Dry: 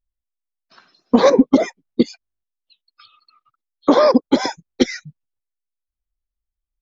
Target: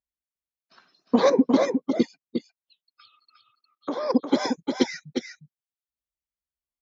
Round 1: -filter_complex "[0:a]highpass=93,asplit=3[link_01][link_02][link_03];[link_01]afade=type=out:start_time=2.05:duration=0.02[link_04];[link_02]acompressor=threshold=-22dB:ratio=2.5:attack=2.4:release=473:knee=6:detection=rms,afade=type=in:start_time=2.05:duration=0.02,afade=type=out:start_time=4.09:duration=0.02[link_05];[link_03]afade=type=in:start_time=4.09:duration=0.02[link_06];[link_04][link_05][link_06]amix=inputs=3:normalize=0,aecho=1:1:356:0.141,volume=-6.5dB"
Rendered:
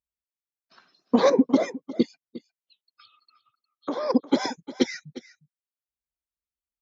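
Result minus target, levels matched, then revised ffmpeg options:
echo-to-direct −11 dB
-filter_complex "[0:a]highpass=93,asplit=3[link_01][link_02][link_03];[link_01]afade=type=out:start_time=2.05:duration=0.02[link_04];[link_02]acompressor=threshold=-22dB:ratio=2.5:attack=2.4:release=473:knee=6:detection=rms,afade=type=in:start_time=2.05:duration=0.02,afade=type=out:start_time=4.09:duration=0.02[link_05];[link_03]afade=type=in:start_time=4.09:duration=0.02[link_06];[link_04][link_05][link_06]amix=inputs=3:normalize=0,aecho=1:1:356:0.501,volume=-6.5dB"

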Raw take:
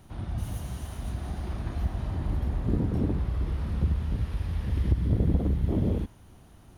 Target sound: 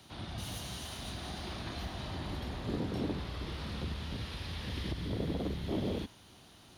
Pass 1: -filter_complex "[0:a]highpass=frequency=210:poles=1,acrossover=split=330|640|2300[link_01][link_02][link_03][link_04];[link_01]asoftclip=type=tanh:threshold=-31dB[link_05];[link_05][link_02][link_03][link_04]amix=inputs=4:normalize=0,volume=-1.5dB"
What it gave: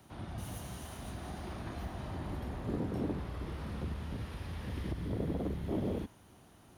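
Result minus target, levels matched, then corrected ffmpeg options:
4,000 Hz band −10.5 dB
-filter_complex "[0:a]highpass=frequency=210:poles=1,equalizer=frequency=4000:width=0.93:gain=13,acrossover=split=330|640|2300[link_01][link_02][link_03][link_04];[link_01]asoftclip=type=tanh:threshold=-31dB[link_05];[link_05][link_02][link_03][link_04]amix=inputs=4:normalize=0,volume=-1.5dB"

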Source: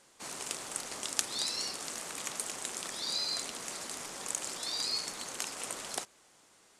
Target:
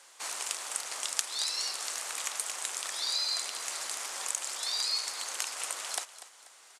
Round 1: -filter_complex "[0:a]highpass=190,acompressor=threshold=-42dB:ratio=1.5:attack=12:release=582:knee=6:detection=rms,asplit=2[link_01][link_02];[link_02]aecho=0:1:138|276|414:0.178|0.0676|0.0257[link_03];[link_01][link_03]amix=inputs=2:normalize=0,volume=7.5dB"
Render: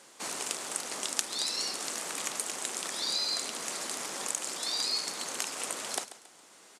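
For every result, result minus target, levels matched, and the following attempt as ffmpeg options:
250 Hz band +15.5 dB; echo 105 ms early
-filter_complex "[0:a]highpass=760,acompressor=threshold=-42dB:ratio=1.5:attack=12:release=582:knee=6:detection=rms,asplit=2[link_01][link_02];[link_02]aecho=0:1:138|276|414:0.178|0.0676|0.0257[link_03];[link_01][link_03]amix=inputs=2:normalize=0,volume=7.5dB"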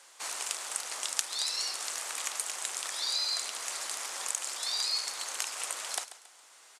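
echo 105 ms early
-filter_complex "[0:a]highpass=760,acompressor=threshold=-42dB:ratio=1.5:attack=12:release=582:knee=6:detection=rms,asplit=2[link_01][link_02];[link_02]aecho=0:1:243|486|729:0.178|0.0676|0.0257[link_03];[link_01][link_03]amix=inputs=2:normalize=0,volume=7.5dB"

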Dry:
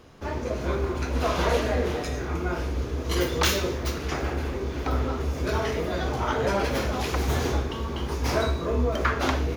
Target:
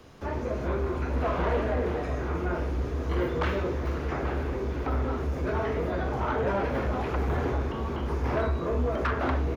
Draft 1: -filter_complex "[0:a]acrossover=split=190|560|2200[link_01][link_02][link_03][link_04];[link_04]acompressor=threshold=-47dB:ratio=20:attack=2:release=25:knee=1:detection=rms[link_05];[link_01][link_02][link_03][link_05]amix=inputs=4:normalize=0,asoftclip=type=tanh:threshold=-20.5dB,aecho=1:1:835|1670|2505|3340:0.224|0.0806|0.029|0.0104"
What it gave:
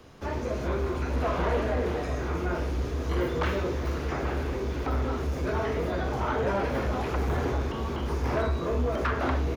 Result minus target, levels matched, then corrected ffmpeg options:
downward compressor: peak gain reduction −7 dB
-filter_complex "[0:a]acrossover=split=190|560|2200[link_01][link_02][link_03][link_04];[link_04]acompressor=threshold=-54.5dB:ratio=20:attack=2:release=25:knee=1:detection=rms[link_05];[link_01][link_02][link_03][link_05]amix=inputs=4:normalize=0,asoftclip=type=tanh:threshold=-20.5dB,aecho=1:1:835|1670|2505|3340:0.224|0.0806|0.029|0.0104"

